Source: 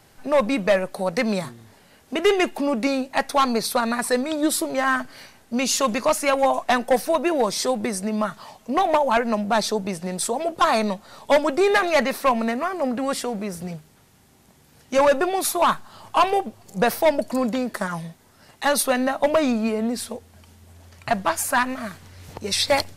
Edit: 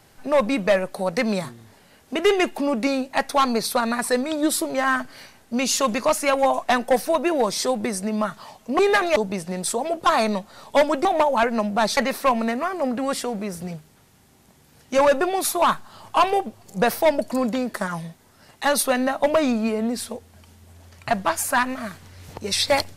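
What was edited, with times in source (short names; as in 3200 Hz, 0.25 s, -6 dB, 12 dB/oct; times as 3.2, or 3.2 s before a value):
8.79–9.71 swap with 11.6–11.97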